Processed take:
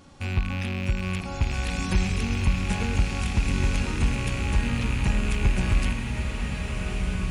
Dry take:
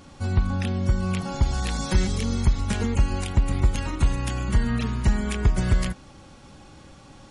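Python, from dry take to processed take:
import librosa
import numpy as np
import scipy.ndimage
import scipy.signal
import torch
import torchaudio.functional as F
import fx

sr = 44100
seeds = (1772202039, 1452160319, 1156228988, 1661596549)

y = fx.rattle_buzz(x, sr, strikes_db=-27.0, level_db=-19.0)
y = fx.rev_bloom(y, sr, seeds[0], attack_ms=1740, drr_db=1.0)
y = F.gain(torch.from_numpy(y), -4.0).numpy()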